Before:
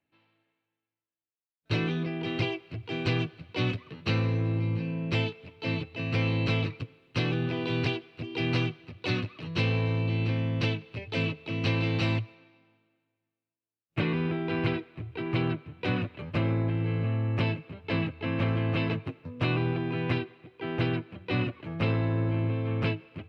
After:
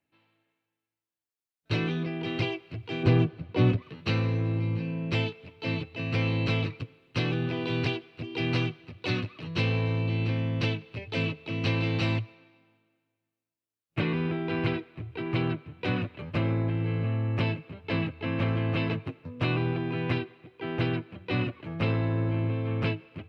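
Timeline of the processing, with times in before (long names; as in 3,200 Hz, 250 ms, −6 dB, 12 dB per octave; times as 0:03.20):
0:03.03–0:03.82: tilt shelving filter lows +7 dB, about 1,500 Hz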